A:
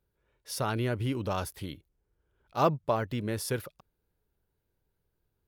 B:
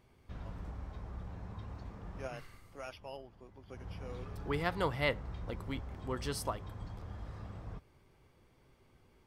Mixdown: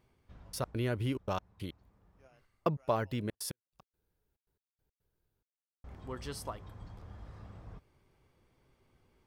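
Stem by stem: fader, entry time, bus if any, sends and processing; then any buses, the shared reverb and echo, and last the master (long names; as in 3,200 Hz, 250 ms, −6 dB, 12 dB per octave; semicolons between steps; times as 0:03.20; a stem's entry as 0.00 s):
−8.5 dB, 0.00 s, no send, automatic gain control gain up to 6 dB; gate pattern "x.x..x.xxx" 141 BPM −60 dB
−4.0 dB, 0.00 s, muted 0:03.35–0:05.84, no send, automatic ducking −16 dB, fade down 1.15 s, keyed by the first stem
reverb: not used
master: no processing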